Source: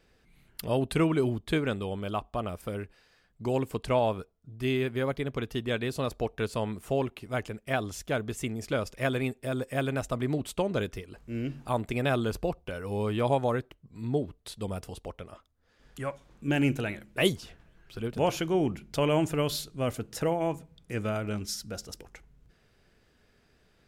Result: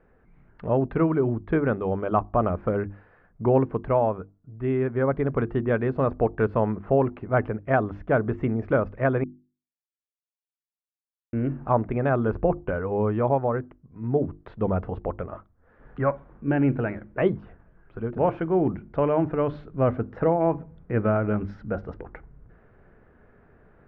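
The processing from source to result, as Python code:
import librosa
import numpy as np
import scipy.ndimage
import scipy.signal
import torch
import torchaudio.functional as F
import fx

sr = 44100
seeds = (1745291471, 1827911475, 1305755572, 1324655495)

y = fx.edit(x, sr, fx.silence(start_s=9.24, length_s=2.09), tone=tone)
y = fx.rider(y, sr, range_db=4, speed_s=0.5)
y = scipy.signal.sosfilt(scipy.signal.butter(4, 1600.0, 'lowpass', fs=sr, output='sos'), y)
y = fx.hum_notches(y, sr, base_hz=50, count=7)
y = y * 10.0 ** (7.0 / 20.0)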